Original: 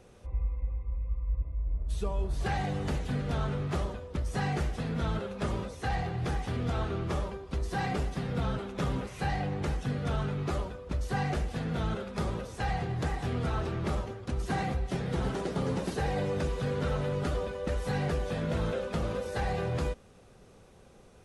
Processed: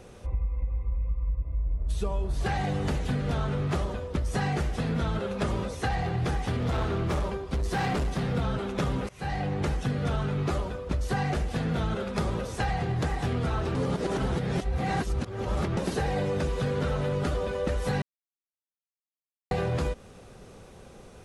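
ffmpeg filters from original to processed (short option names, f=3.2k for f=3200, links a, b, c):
-filter_complex "[0:a]asettb=1/sr,asplit=3[a][b][c];[a]atrim=end=6.584[d];[b]atrim=start=6.58:end=8.35,asetpts=PTS-STARTPTS,afade=t=in:d=0.004:c=qsin,afade=t=out:st=1.766:d=0.004:c=qsin,asoftclip=type=hard:threshold=-29.5dB[e];[c]atrim=start=8.346[f];[d][e]acrossfade=d=0.004:c1=hsin:c2=qsin[g];[g][f]acrossfade=d=0.004:c1=qsin:c2=hsin,asplit=6[h][i][j][k][l][m];[h]atrim=end=9.09,asetpts=PTS-STARTPTS,afade=t=out:st=9.086:d=0.004:c=hsin:silence=0.11885[n];[i]atrim=start=9.09:end=13.752,asetpts=PTS-STARTPTS,afade=t=in:d=0.62:silence=0.11885[o];[j]atrim=start=13.748:end=15.772,asetpts=PTS-STARTPTS,areverse[p];[k]atrim=start=15.768:end=18.02,asetpts=PTS-STARTPTS,afade=t=out:st=2.248:d=0.004:c=hsin[q];[l]atrim=start=18.02:end=19.51,asetpts=PTS-STARTPTS,volume=0[r];[m]atrim=start=19.51,asetpts=PTS-STARTPTS,afade=t=in:d=0.004:c=hsin[s];[n][o]concat=n=2:v=0:a=1[t];[t][p]acrossfade=d=0.004:c1=hsin:c2=hsin[u];[q][r][s]concat=n=3:v=0:a=1[v];[u][v]acrossfade=d=0.004:c1=hsin:c2=hsin,acompressor=threshold=-32dB:ratio=6,volume=7.5dB"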